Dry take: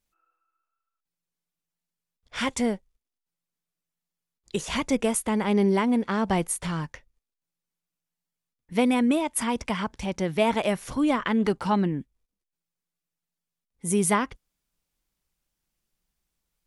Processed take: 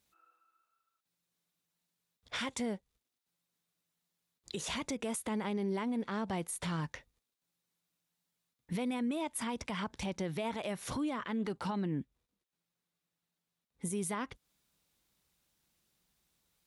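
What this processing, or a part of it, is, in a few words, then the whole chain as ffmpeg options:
broadcast voice chain: -filter_complex "[0:a]asettb=1/sr,asplit=3[link_01][link_02][link_03];[link_01]atrim=end=12.004[link_04];[link_02]atrim=start=12:end=13.85,asetpts=PTS-STARTPTS,afade=type=in:duration=0.004:curve=qsin,afade=type=out:start_time=1.846:duration=0.004:curve=qsin,highshelf=frequency=4000:gain=-6[link_05];[link_03]atrim=start=13.846[link_06];[link_04][link_05]acrossfade=duration=0.004:curve1=hsin:curve2=qsin[link_07];[link_07][link_06]acrossfade=duration=0.004:curve1=qsin:curve2=hsin,highpass=71,deesser=0.3,acompressor=threshold=-36dB:ratio=4,equalizer=frequency=3800:width_type=o:width=0.24:gain=5,alimiter=level_in=8.5dB:limit=-24dB:level=0:latency=1:release=66,volume=-8.5dB,volume=4.5dB"

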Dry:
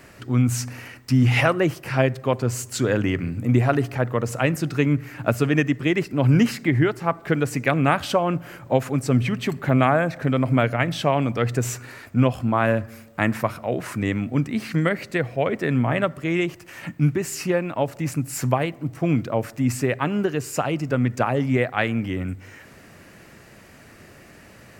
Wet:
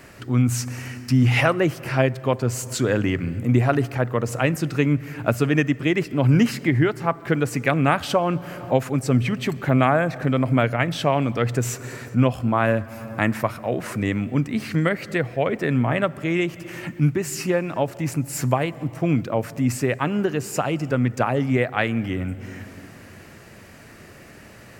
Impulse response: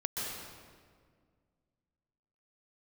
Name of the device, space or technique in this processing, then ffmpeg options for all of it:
ducked reverb: -filter_complex "[0:a]asplit=3[link_01][link_02][link_03];[1:a]atrim=start_sample=2205[link_04];[link_02][link_04]afir=irnorm=-1:irlink=0[link_05];[link_03]apad=whole_len=1093665[link_06];[link_05][link_06]sidechaincompress=threshold=-32dB:ratio=8:attack=6.3:release=293,volume=-12dB[link_07];[link_01][link_07]amix=inputs=2:normalize=0"

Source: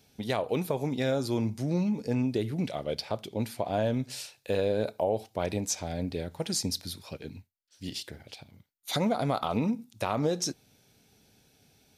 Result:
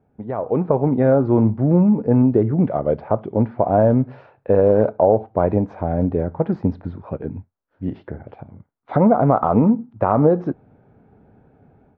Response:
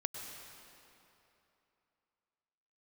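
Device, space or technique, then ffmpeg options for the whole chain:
action camera in a waterproof case: -af "lowpass=frequency=1300:width=0.5412,lowpass=frequency=1300:width=1.3066,dynaudnorm=framelen=360:gausssize=3:maxgain=11dB,volume=2.5dB" -ar 48000 -c:a aac -b:a 64k

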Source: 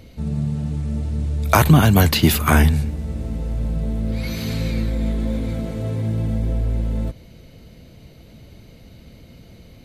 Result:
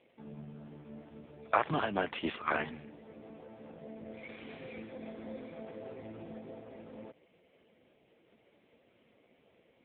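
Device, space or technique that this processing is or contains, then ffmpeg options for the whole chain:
telephone: -af "highpass=400,lowpass=3300,volume=-8.5dB" -ar 8000 -c:a libopencore_amrnb -b:a 5150

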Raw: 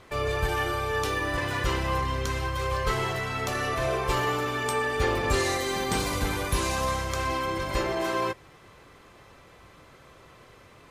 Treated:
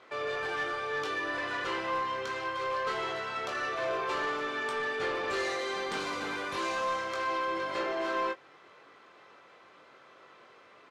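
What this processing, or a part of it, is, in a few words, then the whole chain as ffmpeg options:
intercom: -filter_complex "[0:a]highpass=340,lowpass=4500,equalizer=frequency=1400:width_type=o:width=0.26:gain=4.5,asoftclip=type=tanh:threshold=-23dB,asplit=2[link_01][link_02];[link_02]adelay=21,volume=-6.5dB[link_03];[link_01][link_03]amix=inputs=2:normalize=0,volume=-3.5dB"

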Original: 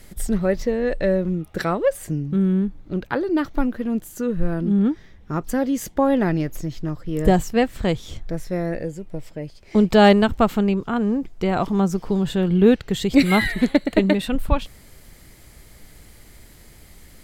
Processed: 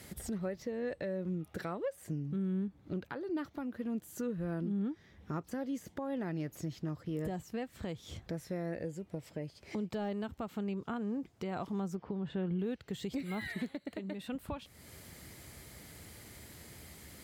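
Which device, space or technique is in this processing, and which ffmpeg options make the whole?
podcast mastering chain: -filter_complex "[0:a]asettb=1/sr,asplit=3[link_01][link_02][link_03];[link_01]atrim=end=11.954[link_04];[link_02]atrim=start=11.95:end=12.59,asetpts=PTS-STARTPTS,afade=type=in:duration=0.004:curve=qsin,afade=type=out:start_time=0.636:duration=0.004:curve=qsin,lowpass=2400[link_05];[link_03]atrim=start=12.586[link_06];[link_04][link_05]acrossfade=duration=0.004:curve1=hsin:curve2=qsin[link_07];[link_07][link_06]acrossfade=duration=0.004:curve1=qsin:curve2=hsin,highpass=frequency=68:width=0.5412,highpass=frequency=68:width=1.3066,deesser=0.7,acompressor=threshold=-39dB:ratio=2,alimiter=level_in=2dB:limit=-24dB:level=0:latency=1:release=278,volume=-2dB,volume=-2dB" -ar 48000 -c:a libmp3lame -b:a 96k

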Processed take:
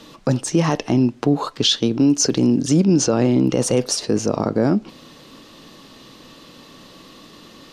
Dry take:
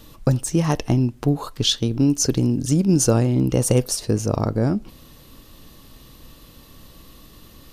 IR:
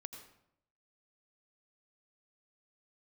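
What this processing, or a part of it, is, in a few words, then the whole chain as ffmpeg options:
DJ mixer with the lows and highs turned down: -filter_complex "[0:a]asettb=1/sr,asplit=3[link_01][link_02][link_03];[link_01]atrim=end=2.844[link_04];[link_02]atrim=start=2.84:end=3.25,asetpts=PTS-STARTPTS,afade=type=in:duration=0.004:curve=qsin,afade=type=out:start_time=0.406:duration=0.004:curve=qsin,lowpass=6000[link_05];[link_03]atrim=start=3.246[link_06];[link_04][link_05]acrossfade=duration=0.004:curve1=hsin:curve2=qsin[link_07];[link_07][link_06]acrossfade=duration=0.004:curve1=qsin:curve2=hsin,acrossover=split=160 7200:gain=0.0794 1 0.0891[link_08][link_09][link_10];[link_08][link_09][link_10]amix=inputs=3:normalize=0,alimiter=limit=-14.5dB:level=0:latency=1:release=22,volume=7dB"

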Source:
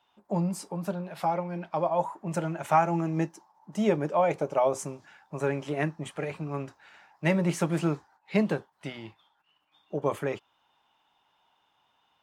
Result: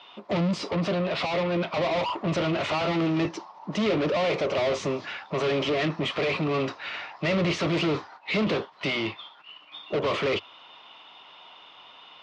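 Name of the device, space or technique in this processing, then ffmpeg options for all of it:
overdrive pedal into a guitar cabinet: -filter_complex "[0:a]asplit=2[link_01][link_02];[link_02]highpass=frequency=720:poles=1,volume=38dB,asoftclip=type=tanh:threshold=-10.5dB[link_03];[link_01][link_03]amix=inputs=2:normalize=0,lowpass=frequency=5600:poles=1,volume=-6dB,highpass=81,equalizer=frequency=95:width_type=q:width=4:gain=5,equalizer=frequency=840:width_type=q:width=4:gain=-10,equalizer=frequency=1600:width_type=q:width=4:gain=-10,lowpass=frequency=4600:width=0.5412,lowpass=frequency=4600:width=1.3066,volume=-6dB"

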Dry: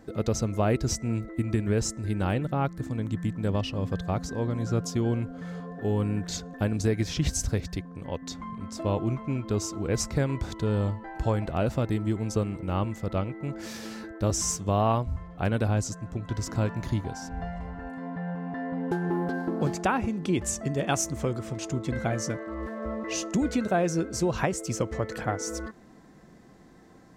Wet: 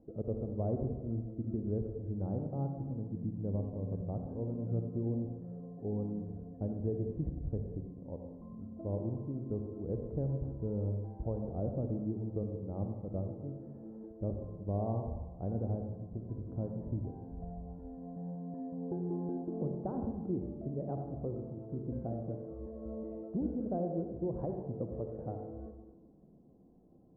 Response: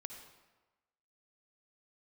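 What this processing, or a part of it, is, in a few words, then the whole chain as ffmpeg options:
next room: -filter_complex "[0:a]lowpass=frequency=650:width=0.5412,lowpass=frequency=650:width=1.3066[link_01];[1:a]atrim=start_sample=2205[link_02];[link_01][link_02]afir=irnorm=-1:irlink=0,volume=-4.5dB"

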